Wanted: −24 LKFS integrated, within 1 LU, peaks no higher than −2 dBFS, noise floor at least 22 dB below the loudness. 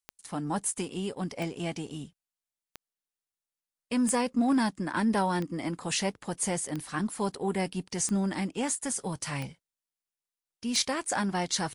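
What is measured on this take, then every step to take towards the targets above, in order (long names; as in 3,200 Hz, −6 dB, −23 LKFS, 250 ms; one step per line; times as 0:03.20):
number of clicks 9; integrated loudness −30.5 LKFS; sample peak −15.0 dBFS; target loudness −24.0 LKFS
→ click removal
level +6.5 dB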